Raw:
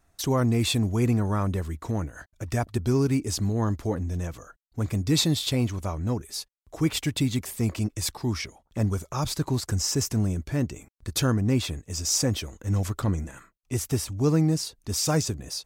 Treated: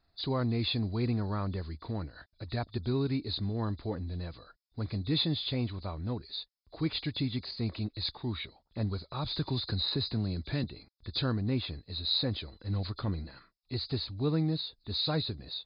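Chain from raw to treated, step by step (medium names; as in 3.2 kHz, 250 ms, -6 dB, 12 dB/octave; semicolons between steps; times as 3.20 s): knee-point frequency compression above 3.4 kHz 4:1; 9.34–10.64 s: three bands compressed up and down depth 70%; trim -7.5 dB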